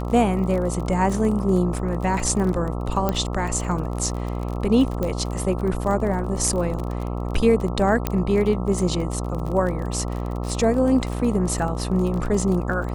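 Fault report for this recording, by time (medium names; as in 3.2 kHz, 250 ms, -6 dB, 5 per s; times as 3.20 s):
buzz 60 Hz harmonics 22 -27 dBFS
crackle 33 per s -28 dBFS
3.09 s: pop -9 dBFS
5.03 s: pop -13 dBFS
8.07 s: pop -7 dBFS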